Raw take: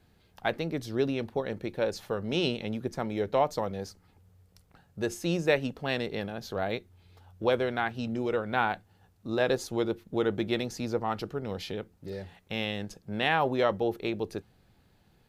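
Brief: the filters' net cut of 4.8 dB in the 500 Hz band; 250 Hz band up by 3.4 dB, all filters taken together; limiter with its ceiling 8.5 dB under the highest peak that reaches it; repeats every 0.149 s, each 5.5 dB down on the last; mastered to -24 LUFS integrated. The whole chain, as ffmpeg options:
-af "equalizer=f=250:t=o:g=7,equalizer=f=500:t=o:g=-8.5,alimiter=limit=-21dB:level=0:latency=1,aecho=1:1:149|298|447|596|745|894|1043:0.531|0.281|0.149|0.079|0.0419|0.0222|0.0118,volume=8dB"

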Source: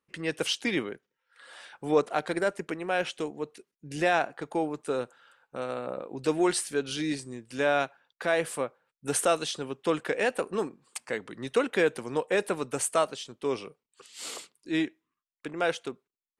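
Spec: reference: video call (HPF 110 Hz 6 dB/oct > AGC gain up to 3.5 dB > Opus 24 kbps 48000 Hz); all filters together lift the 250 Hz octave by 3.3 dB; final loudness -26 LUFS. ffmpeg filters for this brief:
-af "highpass=f=110:p=1,equalizer=f=250:t=o:g=5.5,dynaudnorm=m=3.5dB,volume=3dB" -ar 48000 -c:a libopus -b:a 24k

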